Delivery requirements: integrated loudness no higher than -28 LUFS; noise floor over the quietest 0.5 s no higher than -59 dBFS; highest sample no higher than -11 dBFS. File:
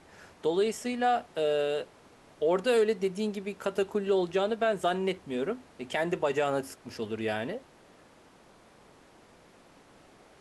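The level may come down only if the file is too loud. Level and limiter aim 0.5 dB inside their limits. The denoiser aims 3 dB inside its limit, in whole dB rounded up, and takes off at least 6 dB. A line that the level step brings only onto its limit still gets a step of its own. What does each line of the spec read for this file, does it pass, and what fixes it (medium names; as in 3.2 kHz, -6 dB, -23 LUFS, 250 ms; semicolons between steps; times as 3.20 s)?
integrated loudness -30.0 LUFS: pass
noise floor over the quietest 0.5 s -57 dBFS: fail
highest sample -15.5 dBFS: pass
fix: noise reduction 6 dB, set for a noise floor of -57 dBFS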